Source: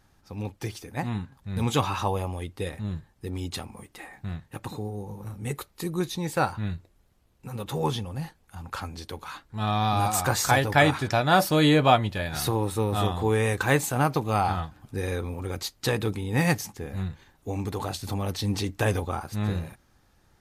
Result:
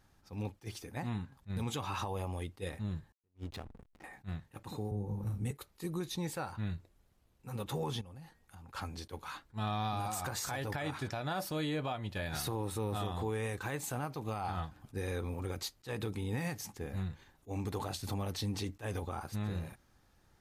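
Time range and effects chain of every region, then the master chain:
3.12–4.04 s: low-pass 2.4 kHz 6 dB/octave + peaking EQ 220 Hz -3 dB 2.6 oct + hysteresis with a dead band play -35.5 dBFS
4.91–5.51 s: bass shelf 460 Hz +10 dB + doubling 49 ms -11.5 dB + three bands expanded up and down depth 70%
8.01–8.69 s: de-hum 234.4 Hz, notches 9 + compression 4:1, threshold -45 dBFS
whole clip: compression 6:1, threshold -26 dBFS; peak limiter -22.5 dBFS; attacks held to a fixed rise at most 410 dB/s; trim -5 dB

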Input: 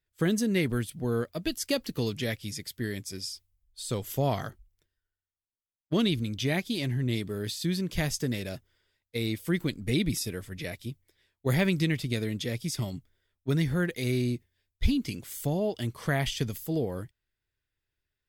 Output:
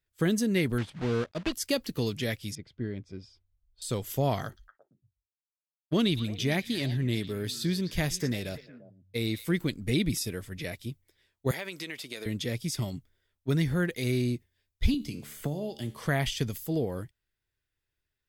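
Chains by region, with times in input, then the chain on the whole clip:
0.78–1.53 s: block-companded coder 3-bit + low-pass 4 kHz
2.55–3.82 s: tape spacing loss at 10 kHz 39 dB + band-stop 1.8 kHz, Q 9.6
4.45–9.57 s: expander -59 dBFS + repeats whose band climbs or falls 114 ms, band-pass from 4.1 kHz, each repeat -1.4 oct, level -9 dB
11.51–12.26 s: high-pass 490 Hz + compression 3:1, threshold -34 dBFS
14.94–16.00 s: dynamic bell 1.6 kHz, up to -5 dB, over -49 dBFS, Q 0.92 + feedback comb 73 Hz, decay 0.43 s + three bands compressed up and down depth 100%
whole clip: none

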